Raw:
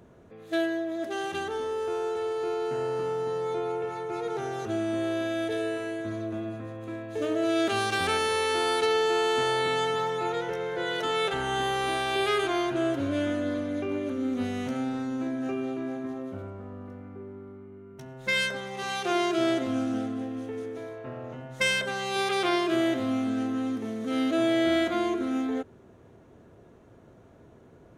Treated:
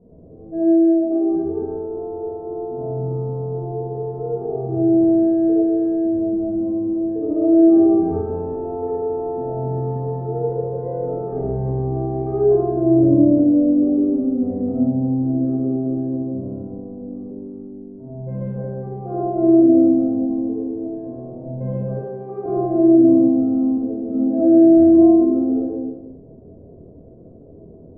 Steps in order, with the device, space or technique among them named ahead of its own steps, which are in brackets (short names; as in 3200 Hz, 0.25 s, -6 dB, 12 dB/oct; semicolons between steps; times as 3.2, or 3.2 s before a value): next room (LPF 570 Hz 24 dB/oct; reverb RT60 1.0 s, pre-delay 43 ms, DRR -6.5 dB); 21.99–22.46 HPF 260 Hz 12 dB/oct; shoebox room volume 240 m³, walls furnished, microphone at 1.8 m